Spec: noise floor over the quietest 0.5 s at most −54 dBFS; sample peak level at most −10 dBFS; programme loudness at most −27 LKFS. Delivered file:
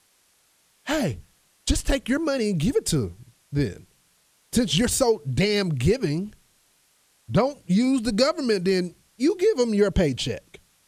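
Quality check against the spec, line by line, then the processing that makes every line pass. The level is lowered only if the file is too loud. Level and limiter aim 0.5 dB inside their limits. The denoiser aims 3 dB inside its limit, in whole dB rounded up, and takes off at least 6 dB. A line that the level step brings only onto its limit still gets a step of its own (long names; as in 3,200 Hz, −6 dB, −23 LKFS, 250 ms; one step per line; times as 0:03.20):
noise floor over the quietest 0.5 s −63 dBFS: in spec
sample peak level −6.5 dBFS: out of spec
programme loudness −24.0 LKFS: out of spec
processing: level −3.5 dB
brickwall limiter −10.5 dBFS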